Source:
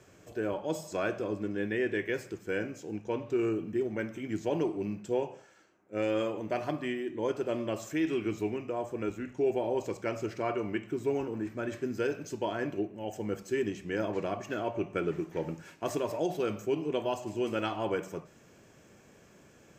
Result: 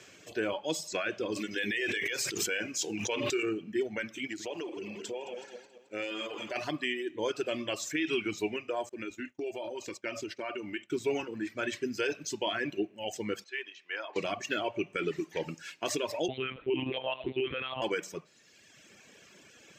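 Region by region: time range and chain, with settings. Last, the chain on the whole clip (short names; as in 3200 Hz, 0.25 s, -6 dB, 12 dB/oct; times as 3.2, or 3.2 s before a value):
1.32–3.43 high shelf 3400 Hz +12 dB + notches 50/100/150/200/250/300/350/400/450 Hz + backwards sustainer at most 42 dB/s
4.27–6.56 regenerating reverse delay 0.108 s, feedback 70%, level -8.5 dB + bell 140 Hz -9.5 dB 0.92 oct + compressor, threshold -34 dBFS
8.89–10.9 expander -39 dBFS + comb 3.3 ms, depth 36% + compressor 4:1, threshold -35 dBFS
13.44–14.16 HPF 910 Hz + tape spacing loss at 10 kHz 25 dB
16.28–17.82 comb 3.2 ms, depth 94% + monotone LPC vocoder at 8 kHz 130 Hz
whole clip: weighting filter D; limiter -22 dBFS; reverb removal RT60 1.5 s; gain +2 dB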